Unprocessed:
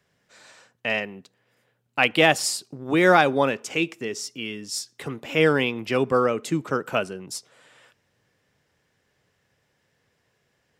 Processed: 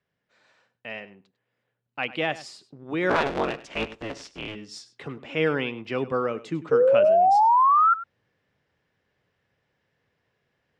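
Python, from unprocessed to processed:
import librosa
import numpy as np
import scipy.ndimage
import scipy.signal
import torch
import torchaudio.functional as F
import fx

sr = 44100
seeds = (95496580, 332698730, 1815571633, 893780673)

y = fx.cycle_switch(x, sr, every=3, mode='inverted', at=(3.09, 4.54), fade=0.02)
y = scipy.signal.sosfilt(scipy.signal.butter(2, 3800.0, 'lowpass', fs=sr, output='sos'), y)
y = fx.rider(y, sr, range_db=5, speed_s=2.0)
y = fx.spec_paint(y, sr, seeds[0], shape='rise', start_s=6.71, length_s=1.23, low_hz=450.0, high_hz=1400.0, level_db=-11.0)
y = y + 10.0 ** (-16.5 / 20.0) * np.pad(y, (int(99 * sr / 1000.0), 0))[:len(y)]
y = y * 10.0 ** (-6.5 / 20.0)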